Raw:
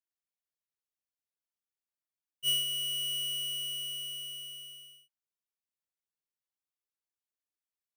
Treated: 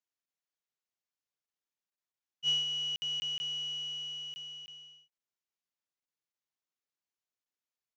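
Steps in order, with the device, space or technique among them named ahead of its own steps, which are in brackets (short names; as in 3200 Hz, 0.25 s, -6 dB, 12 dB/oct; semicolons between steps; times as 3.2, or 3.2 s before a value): call with lost packets (HPF 100 Hz; downsampling 16000 Hz; packet loss)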